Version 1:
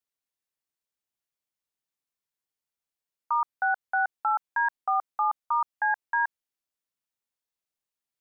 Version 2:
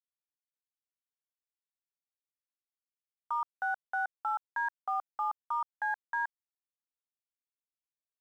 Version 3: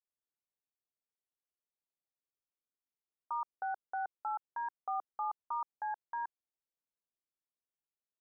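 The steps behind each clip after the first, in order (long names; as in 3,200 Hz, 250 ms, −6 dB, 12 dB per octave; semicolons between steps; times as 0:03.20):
dead-zone distortion −54.5 dBFS; brickwall limiter −25 dBFS, peak gain reduction 7 dB
low-pass filter 1,200 Hz 24 dB per octave; parametric band 390 Hz +4.5 dB 1.1 octaves; level −3 dB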